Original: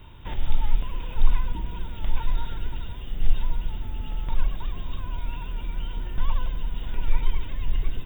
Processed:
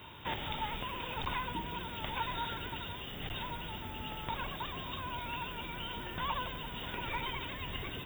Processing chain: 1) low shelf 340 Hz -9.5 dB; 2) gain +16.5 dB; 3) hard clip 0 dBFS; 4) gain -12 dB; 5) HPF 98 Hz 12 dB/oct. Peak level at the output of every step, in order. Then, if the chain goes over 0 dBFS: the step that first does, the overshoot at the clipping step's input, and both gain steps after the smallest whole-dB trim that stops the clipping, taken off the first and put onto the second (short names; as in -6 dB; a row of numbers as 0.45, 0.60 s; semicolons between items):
-13.0, +3.5, 0.0, -12.0, -19.0 dBFS; step 2, 3.5 dB; step 2 +12.5 dB, step 4 -8 dB